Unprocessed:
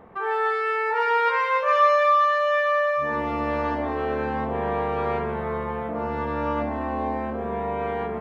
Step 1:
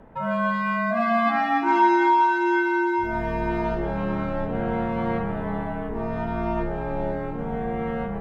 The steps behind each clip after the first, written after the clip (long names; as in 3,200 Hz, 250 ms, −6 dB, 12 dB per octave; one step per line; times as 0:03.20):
frequency shifter −240 Hz
feedback echo with a high-pass in the loop 500 ms, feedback 38%, high-pass 420 Hz, level −13 dB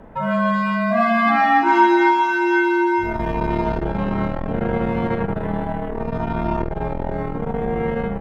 double-tracking delay 41 ms −6 dB
saturating transformer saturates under 290 Hz
level +5.5 dB